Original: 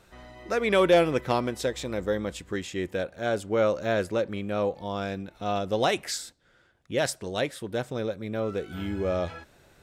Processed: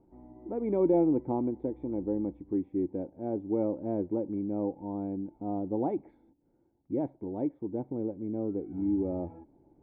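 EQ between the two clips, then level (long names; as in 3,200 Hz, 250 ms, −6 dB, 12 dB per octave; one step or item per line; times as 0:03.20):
formant resonators in series u
+7.5 dB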